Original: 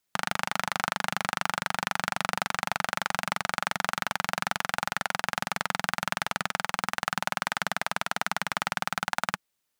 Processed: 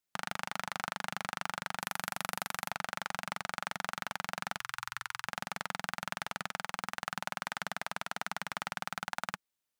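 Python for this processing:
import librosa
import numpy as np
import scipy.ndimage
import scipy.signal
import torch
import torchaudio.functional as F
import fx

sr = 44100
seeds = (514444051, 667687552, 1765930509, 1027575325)

y = fx.peak_eq(x, sr, hz=13000.0, db=10.5, octaves=1.2, at=(1.8, 2.71))
y = fx.ellip_bandstop(y, sr, low_hz=120.0, high_hz=1000.0, order=3, stop_db=40, at=(4.59, 5.26), fade=0.02)
y = y * librosa.db_to_amplitude(-8.5)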